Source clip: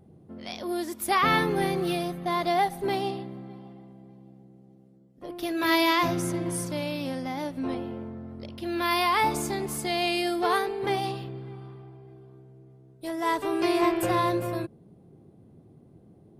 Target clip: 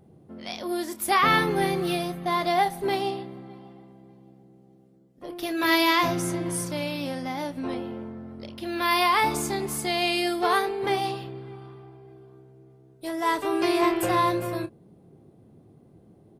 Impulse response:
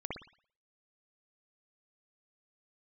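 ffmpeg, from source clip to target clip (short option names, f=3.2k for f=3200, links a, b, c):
-filter_complex "[0:a]lowshelf=f=370:g=-4,asplit=2[a][b];[b]adelay=28,volume=-12dB[c];[a][c]amix=inputs=2:normalize=0,volume=2.5dB"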